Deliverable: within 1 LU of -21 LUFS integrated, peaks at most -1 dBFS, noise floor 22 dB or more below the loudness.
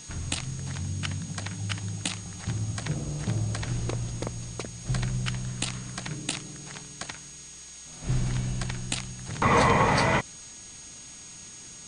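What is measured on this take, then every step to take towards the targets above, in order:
steady tone 6600 Hz; tone level -45 dBFS; noise floor -45 dBFS; noise floor target -52 dBFS; loudness -29.5 LUFS; peak -10.0 dBFS; loudness target -21.0 LUFS
-> notch 6600 Hz, Q 30; denoiser 7 dB, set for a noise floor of -45 dBFS; gain +8.5 dB

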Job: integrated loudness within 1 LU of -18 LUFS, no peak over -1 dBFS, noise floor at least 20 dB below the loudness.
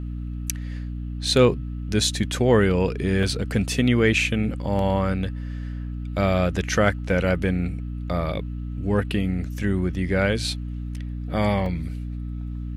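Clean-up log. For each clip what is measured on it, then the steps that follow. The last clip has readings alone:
dropouts 3; longest dropout 2.0 ms; hum 60 Hz; harmonics up to 300 Hz; hum level -27 dBFS; loudness -24.0 LUFS; peak -6.0 dBFS; loudness target -18.0 LUFS
-> interpolate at 3.23/4.79/11.66, 2 ms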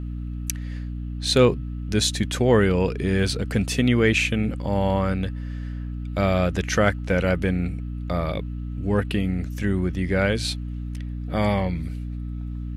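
dropouts 0; hum 60 Hz; harmonics up to 300 Hz; hum level -27 dBFS
-> de-hum 60 Hz, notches 5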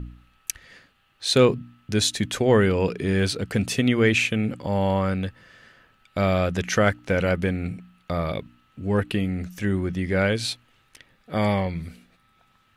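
hum none; loudness -24.0 LUFS; peak -5.5 dBFS; loudness target -18.0 LUFS
-> gain +6 dB; limiter -1 dBFS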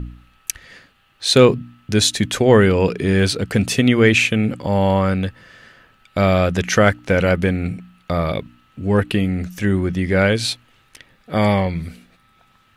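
loudness -18.0 LUFS; peak -1.0 dBFS; noise floor -57 dBFS

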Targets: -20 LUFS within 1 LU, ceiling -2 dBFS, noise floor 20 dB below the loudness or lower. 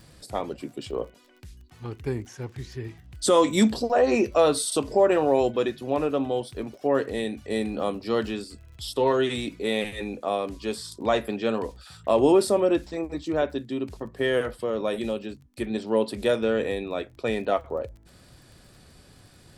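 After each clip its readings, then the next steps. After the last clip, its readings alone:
ticks 30/s; loudness -25.5 LUFS; peak -8.5 dBFS; loudness target -20.0 LUFS
-> de-click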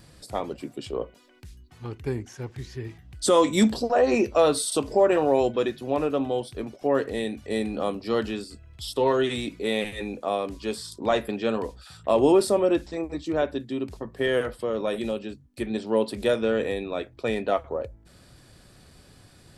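ticks 0.051/s; loudness -25.5 LUFS; peak -8.5 dBFS; loudness target -20.0 LUFS
-> gain +5.5 dB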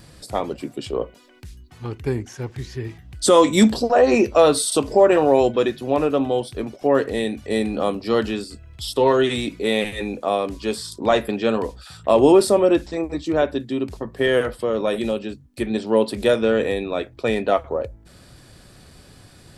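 loudness -20.0 LUFS; peak -3.0 dBFS; noise floor -48 dBFS

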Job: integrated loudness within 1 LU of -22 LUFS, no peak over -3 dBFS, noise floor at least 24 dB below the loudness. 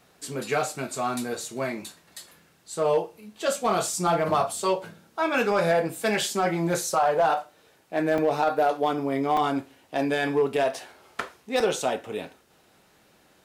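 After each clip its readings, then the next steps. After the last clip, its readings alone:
clipped 0.5%; flat tops at -15.0 dBFS; dropouts 3; longest dropout 3.2 ms; loudness -26.0 LUFS; peak -15.0 dBFS; loudness target -22.0 LUFS
-> clip repair -15 dBFS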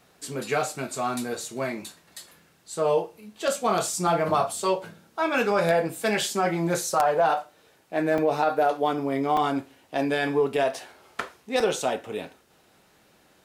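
clipped 0.0%; dropouts 3; longest dropout 3.2 ms
-> interpolate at 8.18/9.37/11.6, 3.2 ms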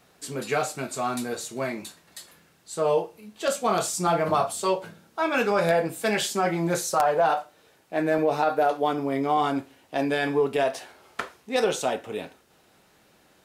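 dropouts 0; loudness -26.0 LUFS; peak -6.0 dBFS; loudness target -22.0 LUFS
-> gain +4 dB; limiter -3 dBFS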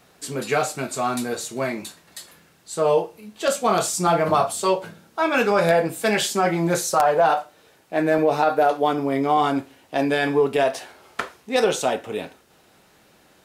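loudness -22.0 LUFS; peak -3.0 dBFS; noise floor -57 dBFS

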